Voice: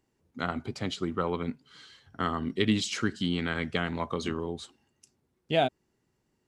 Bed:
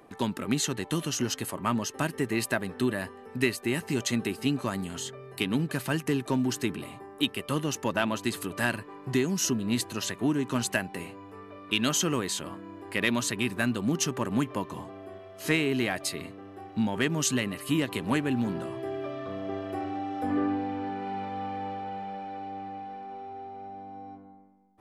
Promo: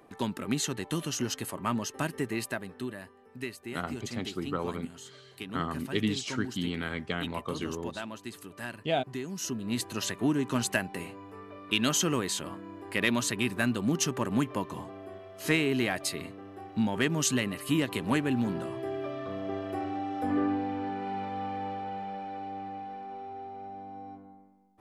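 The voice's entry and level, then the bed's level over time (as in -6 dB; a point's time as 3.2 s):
3.35 s, -3.5 dB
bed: 2.18 s -2.5 dB
3.05 s -11.5 dB
9.14 s -11.5 dB
9.99 s -0.5 dB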